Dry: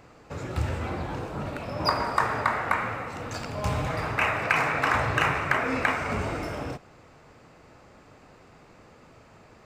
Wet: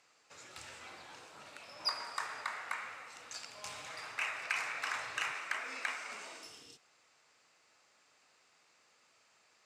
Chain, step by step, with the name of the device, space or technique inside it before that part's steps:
0:06.31–0:06.76: healed spectral selection 490–2,700 Hz both
0:05.32–0:06.45: high-pass filter 180 Hz 24 dB per octave
piezo pickup straight into a mixer (low-pass filter 7,400 Hz 12 dB per octave; first difference)

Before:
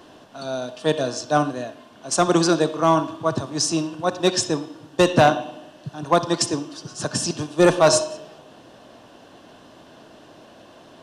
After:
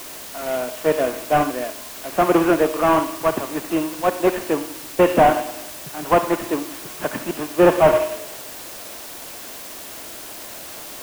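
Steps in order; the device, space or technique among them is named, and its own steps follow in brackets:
army field radio (band-pass filter 300–2,900 Hz; variable-slope delta modulation 16 kbit/s; white noise bed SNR 15 dB)
level +5 dB

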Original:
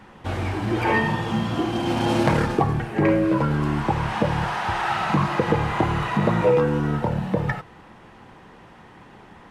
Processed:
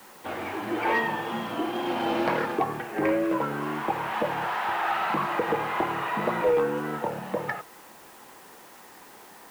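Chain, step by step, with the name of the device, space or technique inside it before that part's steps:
tape answering machine (band-pass filter 340–3,200 Hz; soft clipping −13.5 dBFS, distortion −20 dB; tape wow and flutter; white noise bed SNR 25 dB)
level −1.5 dB

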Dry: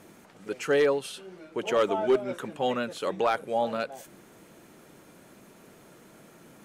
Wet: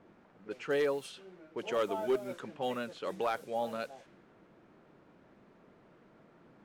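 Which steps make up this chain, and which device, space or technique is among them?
cassette deck with a dynamic noise filter (white noise bed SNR 23 dB; low-pass that shuts in the quiet parts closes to 1,300 Hz, open at −24 dBFS)
level −7.5 dB

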